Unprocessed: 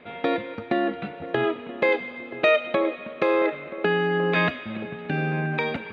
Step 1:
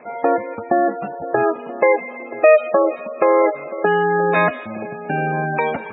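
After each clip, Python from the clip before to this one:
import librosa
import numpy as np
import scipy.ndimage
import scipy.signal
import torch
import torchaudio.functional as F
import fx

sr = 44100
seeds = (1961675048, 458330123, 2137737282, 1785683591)

y = fx.peak_eq(x, sr, hz=800.0, db=11.5, octaves=1.8)
y = fx.spec_gate(y, sr, threshold_db=-20, keep='strong')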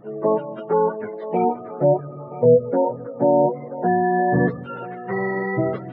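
y = fx.octave_mirror(x, sr, pivot_hz=550.0)
y = fx.echo_wet_highpass(y, sr, ms=153, feedback_pct=63, hz=2600.0, wet_db=-17)
y = F.gain(torch.from_numpy(y), -1.5).numpy()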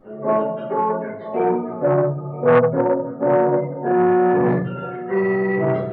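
y = fx.room_shoebox(x, sr, seeds[0], volume_m3=83.0, walls='mixed', distance_m=2.3)
y = fx.transformer_sat(y, sr, knee_hz=830.0)
y = F.gain(torch.from_numpy(y), -7.5).numpy()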